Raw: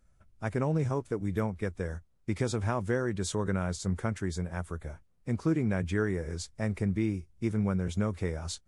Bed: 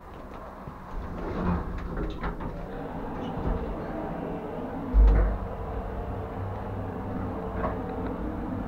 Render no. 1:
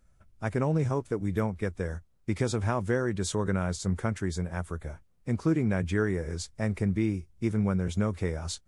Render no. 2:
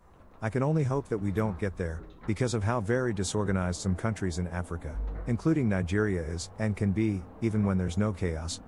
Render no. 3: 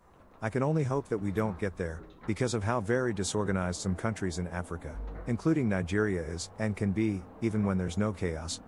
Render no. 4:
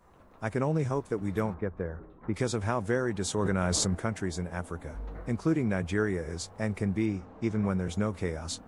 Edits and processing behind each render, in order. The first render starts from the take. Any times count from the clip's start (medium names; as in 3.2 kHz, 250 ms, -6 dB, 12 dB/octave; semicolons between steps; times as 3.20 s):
trim +2 dB
add bed -15.5 dB
bass shelf 110 Hz -7 dB
1.54–2.34 s: low-pass 1.4 kHz; 3.38–3.95 s: level flattener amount 100%; 7.06–7.64 s: low-pass 7.3 kHz 24 dB/octave